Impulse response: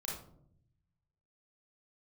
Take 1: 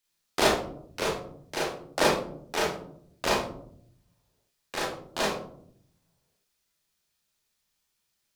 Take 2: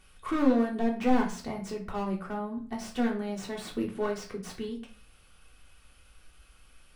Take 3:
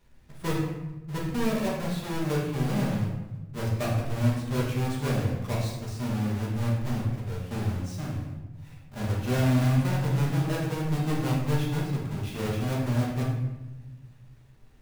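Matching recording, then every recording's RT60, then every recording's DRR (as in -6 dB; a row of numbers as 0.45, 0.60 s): 1; 0.65, 0.40, 1.1 s; -5.0, -1.0, -5.5 dB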